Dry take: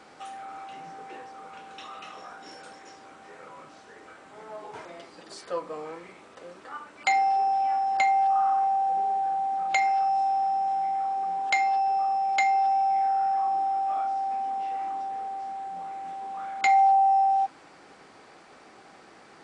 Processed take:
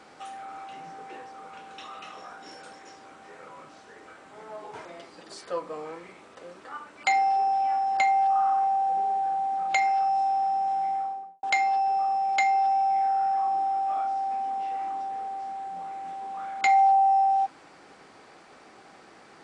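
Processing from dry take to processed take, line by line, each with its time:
0:10.90–0:11.43: fade out and dull

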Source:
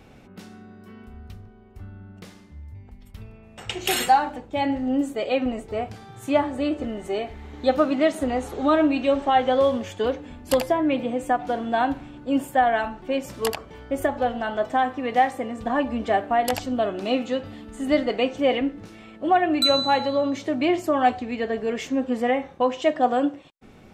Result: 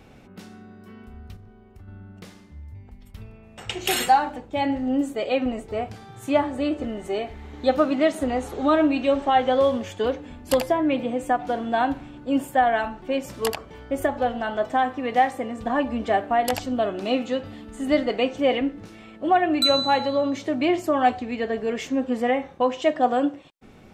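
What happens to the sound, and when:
0:01.36–0:01.88: downward compressor, threshold −41 dBFS

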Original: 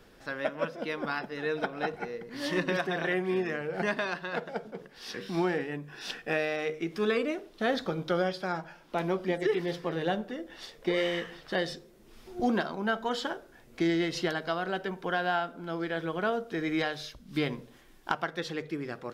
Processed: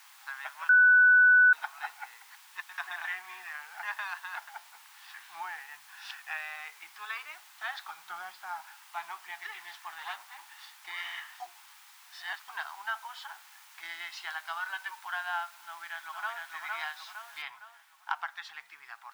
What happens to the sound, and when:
0:00.69–0:01.53: beep over 1,490 Hz −14 dBFS
0:02.35–0:02.78: noise gate −27 dBFS, range −29 dB
0:03.36–0:04.01: high-shelf EQ 4,700 Hz −5 dB
0:04.53–0:05.82: high-frequency loss of the air 190 metres
0:06.33–0:07.11: high-frequency loss of the air 100 metres
0:08.03–0:08.63: tilt shelving filter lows +7.5 dB, about 840 Hz
0:09.98–0:10.47: lower of the sound and its delayed copy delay 8.6 ms
0:11.40–0:12.48: reverse
0:13.05–0:13.83: downward compressor, threshold −33 dBFS
0:14.56–0:15.02: comb filter 3.4 ms, depth 96%
0:15.59–0:16.50: delay throw 460 ms, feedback 45%, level −2 dB
0:17.42: noise floor change −47 dB −58 dB
whole clip: elliptic high-pass filter 840 Hz, stop band 40 dB; high-shelf EQ 3,300 Hz −10.5 dB

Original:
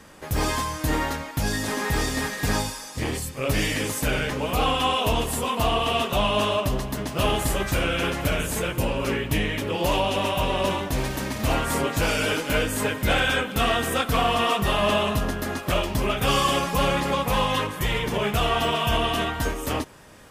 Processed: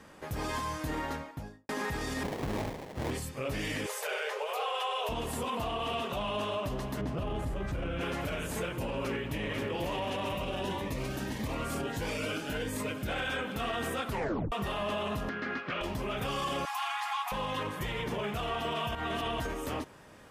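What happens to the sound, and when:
0:00.98–0:01.69: fade out and dull
0:02.23–0:03.11: sample-rate reduction 1,400 Hz, jitter 20%
0:03.86–0:05.09: linear-phase brick-wall high-pass 390 Hz
0:07.01–0:08.01: spectral tilt −2.5 dB per octave
0:08.85–0:09.61: delay throw 490 ms, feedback 70%, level −6 dB
0:10.35–0:13.09: phaser whose notches keep moving one way rising 1.6 Hz
0:14.08: tape stop 0.44 s
0:15.29–0:15.81: loudspeaker in its box 200–4,400 Hz, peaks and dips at 330 Hz −5 dB, 620 Hz −9 dB, 900 Hz −7 dB, 1,500 Hz +6 dB, 2,200 Hz +5 dB, 3,700 Hz −4 dB
0:16.65–0:17.32: linear-phase brick-wall high-pass 690 Hz
0:18.95–0:19.40: reverse
whole clip: high-shelf EQ 3,900 Hz −7 dB; brickwall limiter −21 dBFS; low-shelf EQ 61 Hz −7.5 dB; level −4 dB

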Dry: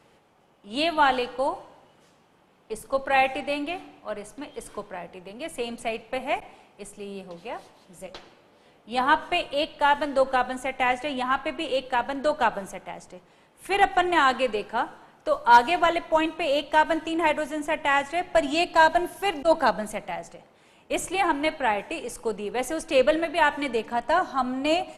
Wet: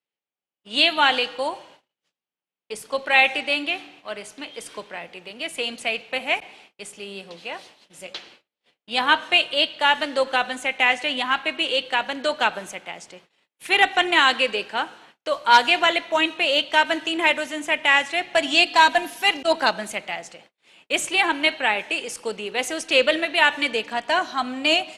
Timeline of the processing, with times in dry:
0:18.66–0:19.37: comb filter 4 ms
whole clip: meter weighting curve D; noise gate −49 dBFS, range −37 dB

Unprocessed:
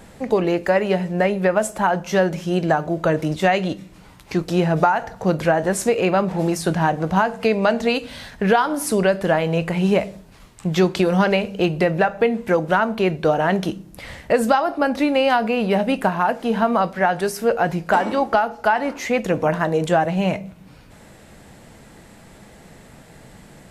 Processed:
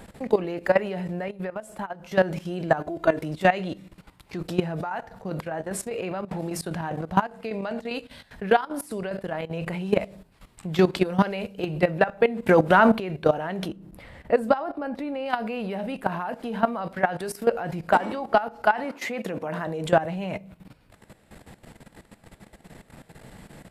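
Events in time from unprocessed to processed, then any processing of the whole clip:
0:01.28–0:02.13: downward compressor, threshold −27 dBFS
0:02.80–0:03.21: comb filter 2.9 ms
0:04.71–0:09.56: square-wave tremolo 5 Hz, depth 65%
0:11.22–0:11.66: high-shelf EQ 6,700 Hz +6 dB
0:12.46–0:13.00: clip gain +8.5 dB
0:13.68–0:15.26: high-shelf EQ 2,200 Hz −9.5 dB
0:18.84–0:19.67: high-pass filter 150 Hz
whole clip: output level in coarse steps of 15 dB; parametric band 6,200 Hz −6.5 dB 0.46 octaves

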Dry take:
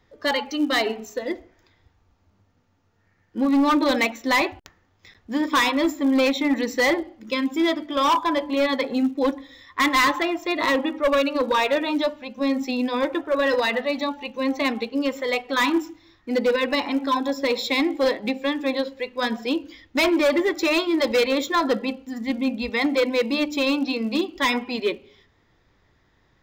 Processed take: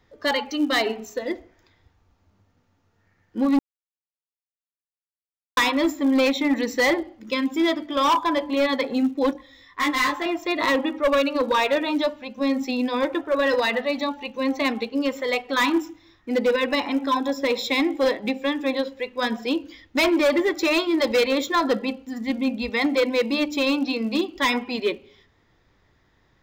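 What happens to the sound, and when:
0:03.59–0:05.57: silence
0:09.33–0:10.26: micro pitch shift up and down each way 11 cents
0:15.81–0:19.40: notch filter 4,400 Hz

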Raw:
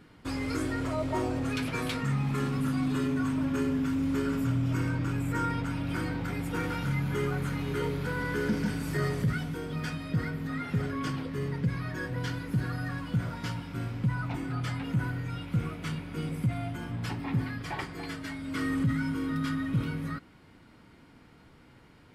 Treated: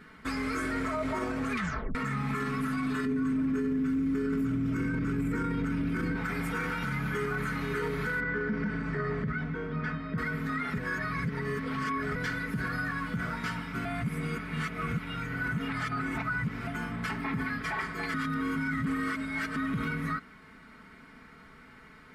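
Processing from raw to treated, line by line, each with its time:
0:01.52: tape stop 0.43 s
0:03.05–0:06.16: low shelf with overshoot 520 Hz +9 dB, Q 1.5
0:08.20–0:10.18: head-to-tape spacing loss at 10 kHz 30 dB
0:10.78–0:12.15: reverse
0:13.85–0:16.67: reverse
0:18.14–0:19.56: reverse
whole clip: flat-topped bell 1,600 Hz +9 dB 1.2 octaves; comb filter 4.6 ms, depth 62%; brickwall limiter −23.5 dBFS

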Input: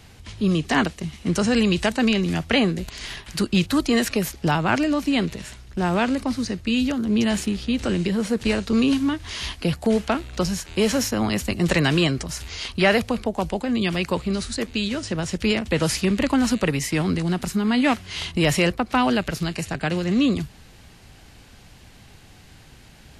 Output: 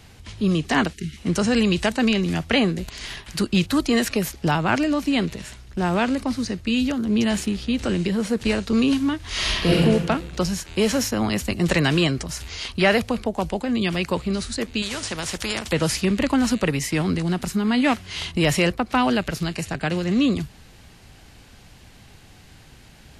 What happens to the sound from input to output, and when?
0:00.93–0:01.17: time-frequency box erased 450–1,300 Hz
0:09.28–0:09.77: thrown reverb, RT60 1.3 s, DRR −8 dB
0:14.82–0:15.73: every bin compressed towards the loudest bin 2 to 1

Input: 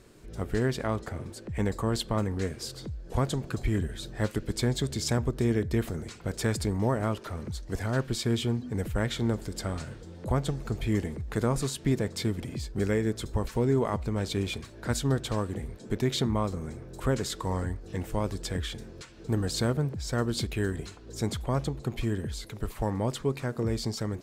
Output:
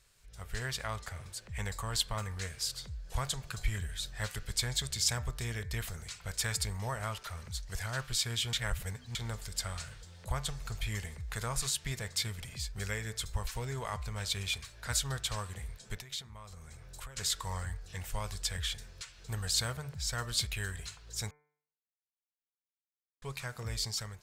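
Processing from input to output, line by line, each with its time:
0:08.53–0:09.15: reverse
0:15.95–0:17.17: downward compressor 5 to 1, threshold −38 dBFS
0:21.31–0:23.22: silence
whole clip: automatic gain control gain up to 8 dB; guitar amp tone stack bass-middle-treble 10-0-10; hum removal 148.7 Hz, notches 16; level −3.5 dB

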